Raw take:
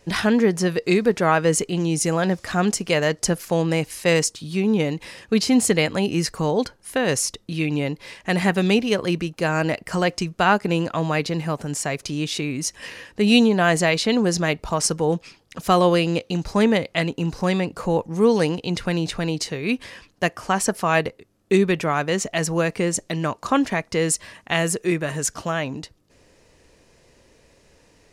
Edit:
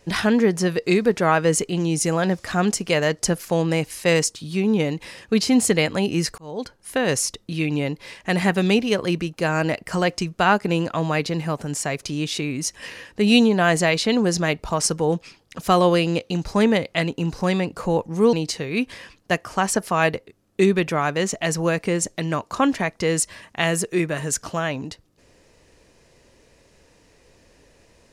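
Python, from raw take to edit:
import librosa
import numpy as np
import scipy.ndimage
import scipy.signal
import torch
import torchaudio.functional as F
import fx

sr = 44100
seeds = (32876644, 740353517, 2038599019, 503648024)

y = fx.edit(x, sr, fx.fade_in_span(start_s=6.38, length_s=0.52),
    fx.cut(start_s=18.33, length_s=0.92), tone=tone)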